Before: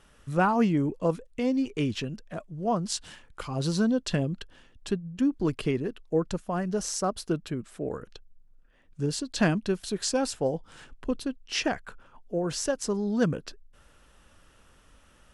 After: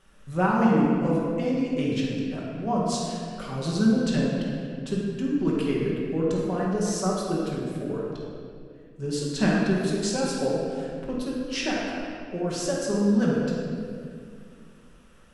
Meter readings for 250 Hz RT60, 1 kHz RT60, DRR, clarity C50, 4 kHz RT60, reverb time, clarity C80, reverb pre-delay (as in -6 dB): 2.9 s, 1.9 s, -5.5 dB, -1.5 dB, 1.5 s, 2.3 s, 0.5 dB, 5 ms